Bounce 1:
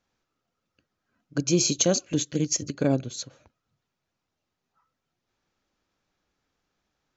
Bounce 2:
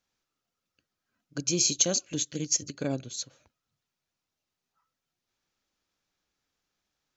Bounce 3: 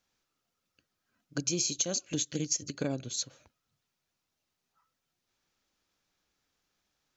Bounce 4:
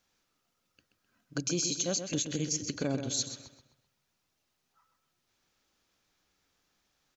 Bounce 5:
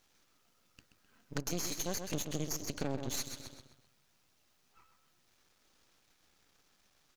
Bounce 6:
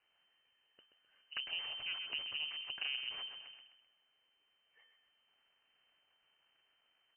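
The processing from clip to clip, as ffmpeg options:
-af "highshelf=f=2300:g=9.5,volume=0.398"
-af "acompressor=threshold=0.0316:ratio=6,volume=1.33"
-filter_complex "[0:a]alimiter=level_in=1.06:limit=0.0631:level=0:latency=1:release=76,volume=0.944,asplit=2[s0][s1];[s1]adelay=129,lowpass=f=4700:p=1,volume=0.398,asplit=2[s2][s3];[s3]adelay=129,lowpass=f=4700:p=1,volume=0.43,asplit=2[s4][s5];[s5]adelay=129,lowpass=f=4700:p=1,volume=0.43,asplit=2[s6][s7];[s7]adelay=129,lowpass=f=4700:p=1,volume=0.43,asplit=2[s8][s9];[s9]adelay=129,lowpass=f=4700:p=1,volume=0.43[s10];[s2][s4][s6][s8][s10]amix=inputs=5:normalize=0[s11];[s0][s11]amix=inputs=2:normalize=0,volume=1.5"
-af "acompressor=threshold=0.00562:ratio=2.5,aeval=exprs='max(val(0),0)':c=same,volume=2.82"
-af "lowpass=f=2600:t=q:w=0.5098,lowpass=f=2600:t=q:w=0.6013,lowpass=f=2600:t=q:w=0.9,lowpass=f=2600:t=q:w=2.563,afreqshift=-3100,volume=0.631"

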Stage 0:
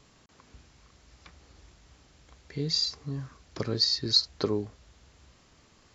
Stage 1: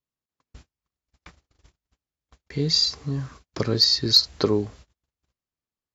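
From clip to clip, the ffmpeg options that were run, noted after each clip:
-af "acontrast=81,agate=range=0.00794:threshold=0.00631:ratio=16:detection=peak"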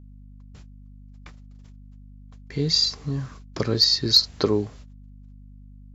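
-af "aeval=exprs='val(0)+0.00631*(sin(2*PI*50*n/s)+sin(2*PI*2*50*n/s)/2+sin(2*PI*3*50*n/s)/3+sin(2*PI*4*50*n/s)/4+sin(2*PI*5*50*n/s)/5)':c=same"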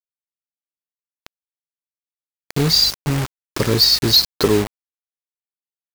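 -filter_complex "[0:a]asplit=2[s0][s1];[s1]aeval=exprs='0.596*sin(PI/2*3.16*val(0)/0.596)':c=same,volume=0.266[s2];[s0][s2]amix=inputs=2:normalize=0,acrusher=bits=3:mix=0:aa=0.000001"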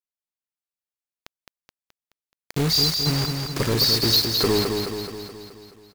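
-filter_complex "[0:a]asoftclip=type=hard:threshold=0.251,asplit=2[s0][s1];[s1]aecho=0:1:213|426|639|852|1065|1278|1491|1704:0.562|0.321|0.183|0.104|0.0594|0.0338|0.0193|0.011[s2];[s0][s2]amix=inputs=2:normalize=0,volume=0.631"

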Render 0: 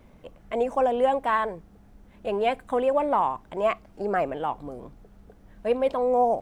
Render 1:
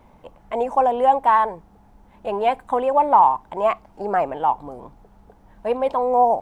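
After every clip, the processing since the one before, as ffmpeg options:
-af "equalizer=f=890:t=o:w=0.58:g=12.5"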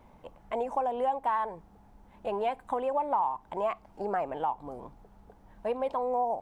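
-af "acompressor=threshold=0.0631:ratio=2.5,volume=0.562"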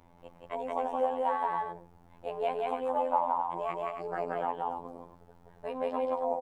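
-af "aecho=1:1:174.9|274.1:0.891|0.447,afftfilt=real='hypot(re,im)*cos(PI*b)':imag='0':win_size=2048:overlap=0.75"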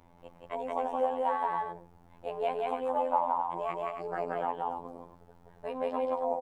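-af anull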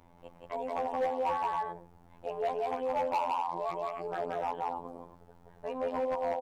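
-af "volume=17.8,asoftclip=hard,volume=0.0562"

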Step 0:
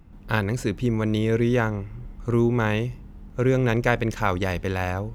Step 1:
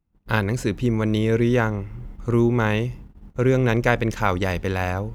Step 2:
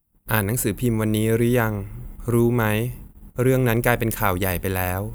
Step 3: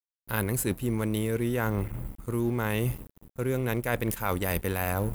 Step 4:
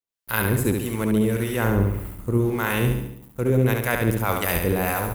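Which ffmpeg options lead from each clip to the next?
-af "agate=range=0.0447:threshold=0.01:ratio=16:detection=peak,volume=1.26"
-af "areverse,acompressor=mode=upward:threshold=0.0178:ratio=2.5,areverse,aexciter=amount=7:drive=8.5:freq=8400"
-af "aeval=exprs='sgn(val(0))*max(abs(val(0))-0.01,0)':c=same,areverse,acompressor=threshold=0.0398:ratio=12,areverse,volume=1.58"
-filter_complex "[0:a]acrossover=split=790[s0][s1];[s0]aeval=exprs='val(0)*(1-0.7/2+0.7/2*cos(2*PI*1.7*n/s))':c=same[s2];[s1]aeval=exprs='val(0)*(1-0.7/2-0.7/2*cos(2*PI*1.7*n/s))':c=same[s3];[s2][s3]amix=inputs=2:normalize=0,asplit=2[s4][s5];[s5]aecho=0:1:70|140|210|280|350|420:0.596|0.298|0.149|0.0745|0.0372|0.0186[s6];[s4][s6]amix=inputs=2:normalize=0,volume=2.51"

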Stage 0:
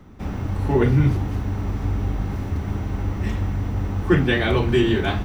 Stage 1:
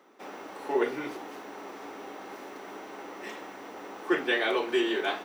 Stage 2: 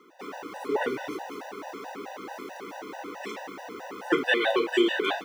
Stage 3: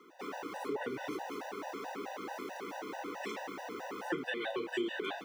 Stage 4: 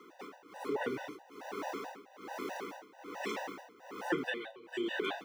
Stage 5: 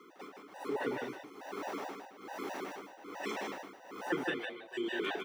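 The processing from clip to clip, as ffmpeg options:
-af "highpass=f=370:w=0.5412,highpass=f=370:w=1.3066,volume=0.631"
-af "afftfilt=real='re*gt(sin(2*PI*4.6*pts/sr)*(1-2*mod(floor(b*sr/1024/500),2)),0)':imag='im*gt(sin(2*PI*4.6*pts/sr)*(1-2*mod(floor(b*sr/1024/500),2)),0)':win_size=1024:overlap=0.75,volume=2.11"
-filter_complex "[0:a]acrossover=split=210[s0][s1];[s1]acompressor=threshold=0.0224:ratio=6[s2];[s0][s2]amix=inputs=2:normalize=0,volume=0.75"
-af "tremolo=f=1.2:d=0.91,volume=1.41"
-af "aecho=1:1:155:0.596,volume=0.891"

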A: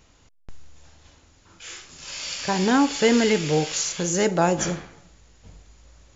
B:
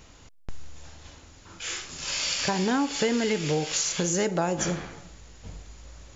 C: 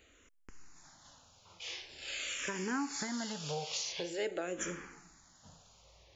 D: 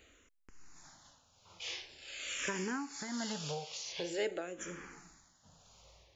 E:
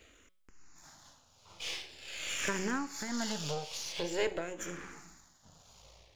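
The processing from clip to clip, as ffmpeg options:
-af "acompressor=threshold=0.0316:ratio=4,volume=1.88"
-filter_complex "[0:a]lowshelf=f=230:g=-10,asplit=2[s0][s1];[s1]afreqshift=-0.46[s2];[s0][s2]amix=inputs=2:normalize=1,volume=0.501"
-af "tremolo=f=1.2:d=0.61,volume=1.19"
-af "aeval=exprs='if(lt(val(0),0),0.447*val(0),val(0))':c=same,bandreject=f=184.5:t=h:w=4,bandreject=f=369:t=h:w=4,bandreject=f=553.5:t=h:w=4,bandreject=f=738:t=h:w=4,bandreject=f=922.5:t=h:w=4,bandreject=f=1107:t=h:w=4,bandreject=f=1291.5:t=h:w=4,bandreject=f=1476:t=h:w=4,bandreject=f=1660.5:t=h:w=4,bandreject=f=1845:t=h:w=4,bandreject=f=2029.5:t=h:w=4,bandreject=f=2214:t=h:w=4,bandreject=f=2398.5:t=h:w=4,bandreject=f=2583:t=h:w=4,bandreject=f=2767.5:t=h:w=4,bandreject=f=2952:t=h:w=4,bandreject=f=3136.5:t=h:w=4,bandreject=f=3321:t=h:w=4,bandreject=f=3505.5:t=h:w=4,bandreject=f=3690:t=h:w=4,bandreject=f=3874.5:t=h:w=4,bandreject=f=4059:t=h:w=4,bandreject=f=4243.5:t=h:w=4,bandreject=f=4428:t=h:w=4,bandreject=f=4612.5:t=h:w=4,bandreject=f=4797:t=h:w=4,bandreject=f=4981.5:t=h:w=4,bandreject=f=5166:t=h:w=4,volume=1.88"

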